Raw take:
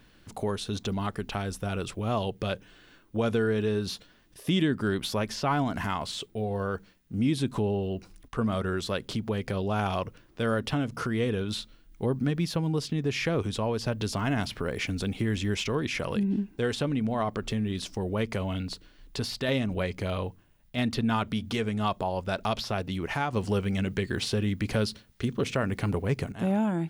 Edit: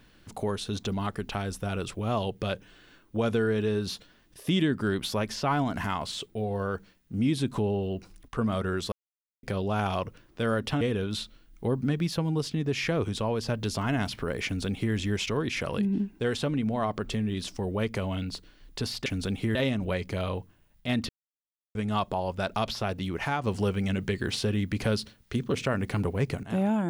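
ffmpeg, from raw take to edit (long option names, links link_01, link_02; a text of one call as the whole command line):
ffmpeg -i in.wav -filter_complex "[0:a]asplit=8[link_01][link_02][link_03][link_04][link_05][link_06][link_07][link_08];[link_01]atrim=end=8.92,asetpts=PTS-STARTPTS,afade=type=out:start_time=8.916:duration=0.004:curve=hsin[link_09];[link_02]atrim=start=8.92:end=9.43,asetpts=PTS-STARTPTS,volume=0[link_10];[link_03]atrim=start=9.43:end=10.812,asetpts=PTS-STARTPTS,afade=type=in:duration=0.004:curve=hsin[link_11];[link_04]atrim=start=11.188:end=19.442[link_12];[link_05]atrim=start=14.828:end=15.322[link_13];[link_06]atrim=start=19.438:end=20.98,asetpts=PTS-STARTPTS,afade=type=out:start_time=1.538:duration=0.004:curve=hsin[link_14];[link_07]atrim=start=20.98:end=21.64,asetpts=PTS-STARTPTS,volume=0[link_15];[link_08]atrim=start=21.64,asetpts=PTS-STARTPTS,afade=type=in:duration=0.004:curve=hsin[link_16];[link_09][link_10][link_11]concat=n=3:v=0:a=1[link_17];[link_17][link_12]acrossfade=duration=0.004:curve1=hsin:curve2=hsin[link_18];[link_18][link_13]acrossfade=duration=0.004:curve1=hsin:curve2=hsin[link_19];[link_14][link_15][link_16]concat=n=3:v=0:a=1[link_20];[link_19][link_20]acrossfade=duration=0.004:curve1=hsin:curve2=hsin" out.wav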